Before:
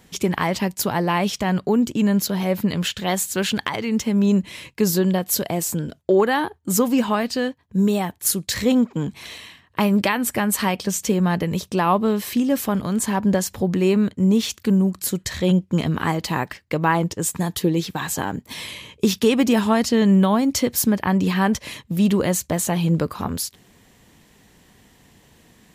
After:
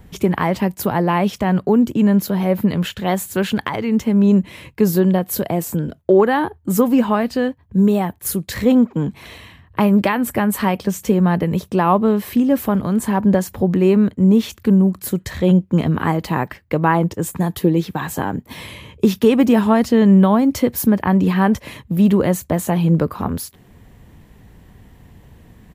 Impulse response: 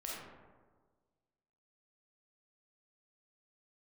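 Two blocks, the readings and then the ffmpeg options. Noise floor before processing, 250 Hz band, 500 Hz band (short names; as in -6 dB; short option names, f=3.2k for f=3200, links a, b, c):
-55 dBFS, +4.5 dB, +4.0 dB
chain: -filter_complex "[0:a]equalizer=f=6.3k:w=0.43:g=-12,acrossover=split=120|7400[a][b][c];[a]acompressor=mode=upward:threshold=-39dB:ratio=2.5[d];[c]asplit=2[e][f];[f]adelay=23,volume=-7.5dB[g];[e][g]amix=inputs=2:normalize=0[h];[d][b][h]amix=inputs=3:normalize=0,volume=4.5dB"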